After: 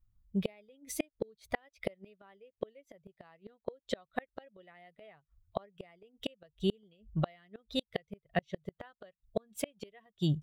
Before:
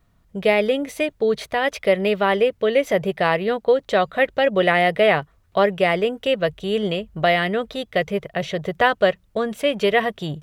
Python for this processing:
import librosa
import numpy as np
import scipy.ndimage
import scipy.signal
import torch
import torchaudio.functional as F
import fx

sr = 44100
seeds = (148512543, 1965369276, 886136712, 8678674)

y = fx.bin_expand(x, sr, power=1.5)
y = fx.gate_flip(y, sr, shuts_db=-19.0, range_db=-38)
y = F.gain(torch.from_numpy(y), 1.0).numpy()